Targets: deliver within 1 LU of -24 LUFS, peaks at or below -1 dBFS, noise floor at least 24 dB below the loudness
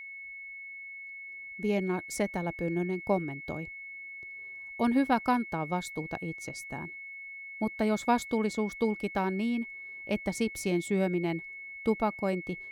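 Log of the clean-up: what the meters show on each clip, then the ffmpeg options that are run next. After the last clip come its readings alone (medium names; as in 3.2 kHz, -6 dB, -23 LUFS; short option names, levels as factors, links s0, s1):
steady tone 2.2 kHz; tone level -41 dBFS; loudness -32.5 LUFS; peak level -13.5 dBFS; loudness target -24.0 LUFS
-> -af "bandreject=f=2200:w=30"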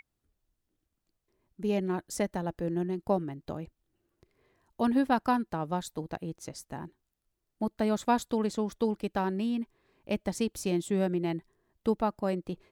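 steady tone not found; loudness -31.5 LUFS; peak level -14.0 dBFS; loudness target -24.0 LUFS
-> -af "volume=2.37"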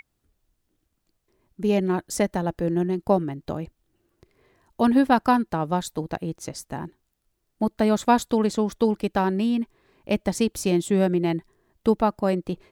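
loudness -24.0 LUFS; peak level -6.5 dBFS; noise floor -76 dBFS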